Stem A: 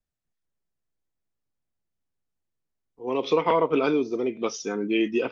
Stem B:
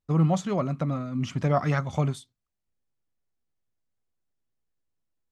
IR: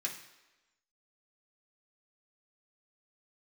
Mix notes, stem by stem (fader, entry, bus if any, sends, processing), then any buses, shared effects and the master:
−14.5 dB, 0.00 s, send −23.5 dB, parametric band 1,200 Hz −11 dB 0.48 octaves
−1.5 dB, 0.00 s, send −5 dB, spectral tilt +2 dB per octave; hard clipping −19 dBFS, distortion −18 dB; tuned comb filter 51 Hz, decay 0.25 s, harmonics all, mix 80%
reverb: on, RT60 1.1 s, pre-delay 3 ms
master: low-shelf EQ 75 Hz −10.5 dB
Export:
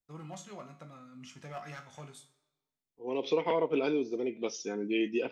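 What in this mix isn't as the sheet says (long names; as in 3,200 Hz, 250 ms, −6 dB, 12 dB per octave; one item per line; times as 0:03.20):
stem A −14.5 dB → −6.0 dB
stem B −1.5 dB → −13.0 dB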